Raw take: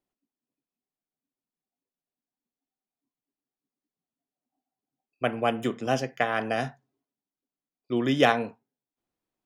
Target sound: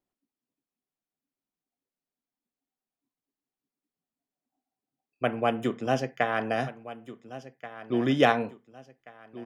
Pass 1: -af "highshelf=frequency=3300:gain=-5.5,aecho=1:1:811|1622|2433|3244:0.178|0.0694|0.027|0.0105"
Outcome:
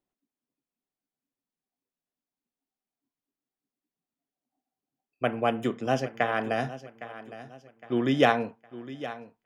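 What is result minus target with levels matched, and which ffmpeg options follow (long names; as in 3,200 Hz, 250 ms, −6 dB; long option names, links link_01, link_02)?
echo 620 ms early
-af "highshelf=frequency=3300:gain=-5.5,aecho=1:1:1431|2862|4293|5724:0.178|0.0694|0.027|0.0105"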